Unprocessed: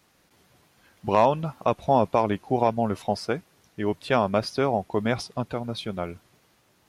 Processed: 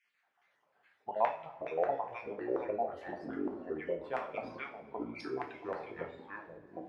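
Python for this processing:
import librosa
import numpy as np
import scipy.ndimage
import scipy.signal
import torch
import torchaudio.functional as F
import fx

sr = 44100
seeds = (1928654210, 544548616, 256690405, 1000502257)

y = fx.spec_dropout(x, sr, seeds[0], share_pct=39)
y = fx.over_compress(y, sr, threshold_db=-35.0, ratio=-0.5, at=(4.97, 5.5), fade=0.02)
y = fx.filter_lfo_bandpass(y, sr, shape='square', hz=2.4, low_hz=780.0, high_hz=2100.0, q=3.6)
y = fx.rev_double_slope(y, sr, seeds[1], early_s=0.39, late_s=2.2, knee_db=-20, drr_db=1.5)
y = fx.echo_pitch(y, sr, ms=168, semitones=-5, count=3, db_per_echo=-3.0)
y = y * 10.0 ** (-5.0 / 20.0)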